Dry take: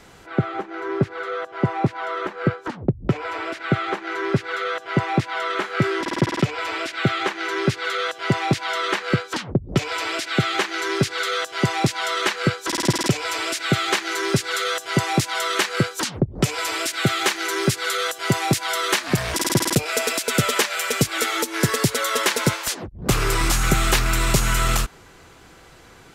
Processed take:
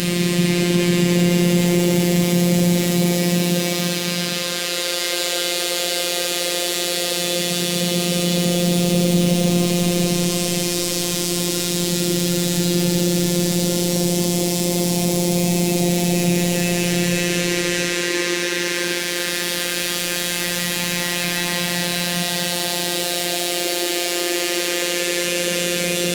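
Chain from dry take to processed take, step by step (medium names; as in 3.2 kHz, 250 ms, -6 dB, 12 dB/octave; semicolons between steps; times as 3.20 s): high-order bell 1.1 kHz -14.5 dB; granulator, pitch spread up and down by 7 st; Paulstretch 10×, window 0.50 s, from 18.25 s; on a send at -2.5 dB: reverberation RT60 0.55 s, pre-delay 21 ms; on the sum: robot voice 175 Hz; peak limiter -10 dBFS, peak gain reduction 8.5 dB; trim +8.5 dB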